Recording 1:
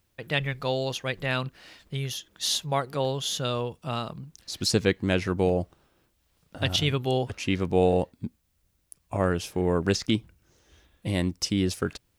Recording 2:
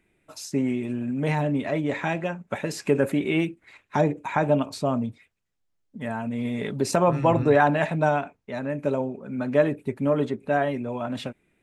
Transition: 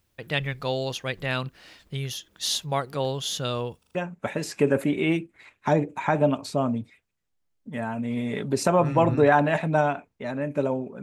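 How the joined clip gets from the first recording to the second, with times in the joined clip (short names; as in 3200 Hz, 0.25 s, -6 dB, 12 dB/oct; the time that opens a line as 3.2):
recording 1
3.79 stutter in place 0.04 s, 4 plays
3.95 switch to recording 2 from 2.23 s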